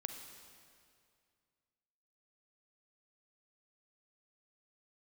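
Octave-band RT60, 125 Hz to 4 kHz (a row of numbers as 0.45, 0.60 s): 2.6, 2.3, 2.3, 2.2, 2.1, 2.0 s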